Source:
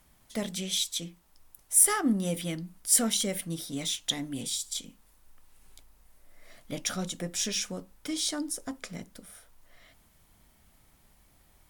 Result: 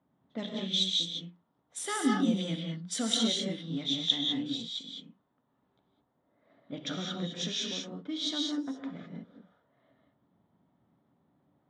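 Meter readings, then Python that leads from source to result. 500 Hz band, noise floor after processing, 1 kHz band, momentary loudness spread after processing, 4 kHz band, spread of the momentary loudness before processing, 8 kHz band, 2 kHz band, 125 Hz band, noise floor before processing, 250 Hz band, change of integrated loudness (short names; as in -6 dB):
-2.5 dB, -76 dBFS, -2.0 dB, 17 LU, +3.0 dB, 17 LU, -13.0 dB, -3.0 dB, -1.0 dB, -63 dBFS, +1.0 dB, -3.0 dB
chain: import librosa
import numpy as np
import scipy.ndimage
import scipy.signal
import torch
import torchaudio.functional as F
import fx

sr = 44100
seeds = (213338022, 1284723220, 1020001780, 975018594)

y = fx.env_lowpass(x, sr, base_hz=840.0, full_db=-23.0)
y = fx.high_shelf(y, sr, hz=4600.0, db=8.5)
y = 10.0 ** (-5.0 / 20.0) * np.tanh(y / 10.0 ** (-5.0 / 20.0))
y = fx.cabinet(y, sr, low_hz=110.0, low_slope=24, high_hz=5800.0, hz=(270.0, 2400.0, 3600.0, 5100.0), db=(6, -4, 9, -8))
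y = fx.rev_gated(y, sr, seeds[0], gate_ms=230, shape='rising', drr_db=0.0)
y = y * 10.0 ** (-6.0 / 20.0)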